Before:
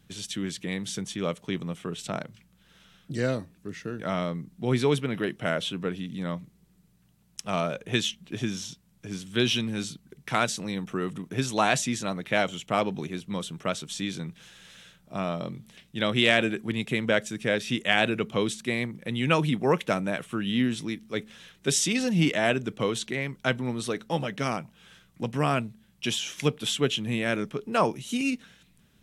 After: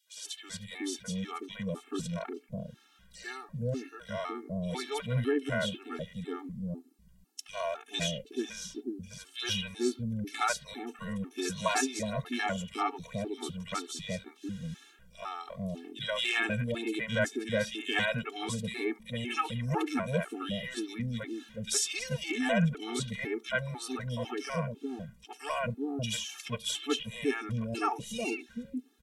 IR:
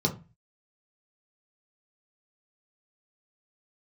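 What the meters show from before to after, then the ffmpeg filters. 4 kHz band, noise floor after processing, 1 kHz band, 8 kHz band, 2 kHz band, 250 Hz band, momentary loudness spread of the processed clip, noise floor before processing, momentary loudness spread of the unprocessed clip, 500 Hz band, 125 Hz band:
-5.5 dB, -60 dBFS, -5.0 dB, -3.5 dB, -5.5 dB, -6.0 dB, 11 LU, -62 dBFS, 12 LU, -6.5 dB, -4.5 dB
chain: -filter_complex "[0:a]acrossover=split=530|2600[a][b][c];[b]adelay=70[d];[a]adelay=440[e];[e][d][c]amix=inputs=3:normalize=0,asubboost=boost=3.5:cutoff=71,afftfilt=real='re*gt(sin(2*PI*2*pts/sr)*(1-2*mod(floor(b*sr/1024/230),2)),0)':imag='im*gt(sin(2*PI*2*pts/sr)*(1-2*mod(floor(b*sr/1024/230),2)),0)':win_size=1024:overlap=0.75"

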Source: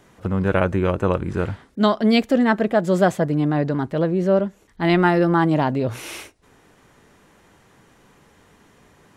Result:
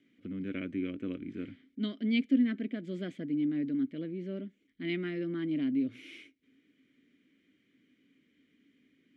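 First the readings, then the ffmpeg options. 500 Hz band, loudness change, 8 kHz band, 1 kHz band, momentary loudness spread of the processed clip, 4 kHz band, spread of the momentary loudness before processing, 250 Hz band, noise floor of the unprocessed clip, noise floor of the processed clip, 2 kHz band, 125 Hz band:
-21.5 dB, -14.0 dB, under -25 dB, under -30 dB, 14 LU, -14.0 dB, 10 LU, -10.5 dB, -56 dBFS, -73 dBFS, -17.0 dB, -20.5 dB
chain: -filter_complex "[0:a]asplit=3[a][b][c];[a]bandpass=f=270:t=q:w=8,volume=0dB[d];[b]bandpass=f=2.29k:t=q:w=8,volume=-6dB[e];[c]bandpass=f=3.01k:t=q:w=8,volume=-9dB[f];[d][e][f]amix=inputs=3:normalize=0,volume=-2.5dB"

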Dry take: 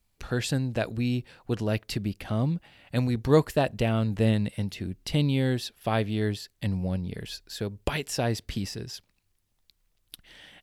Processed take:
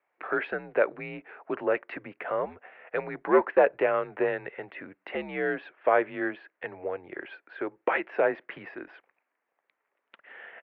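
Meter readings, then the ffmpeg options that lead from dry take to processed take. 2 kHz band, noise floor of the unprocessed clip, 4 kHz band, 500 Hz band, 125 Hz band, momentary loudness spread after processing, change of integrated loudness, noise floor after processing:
+5.5 dB, -73 dBFS, under -15 dB, +3.5 dB, -23.5 dB, 18 LU, -0.5 dB, -82 dBFS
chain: -af "asoftclip=type=tanh:threshold=-16dB,highpass=f=510:t=q:w=0.5412,highpass=f=510:t=q:w=1.307,lowpass=f=2.2k:t=q:w=0.5176,lowpass=f=2.2k:t=q:w=0.7071,lowpass=f=2.2k:t=q:w=1.932,afreqshift=-82,volume=8.5dB"

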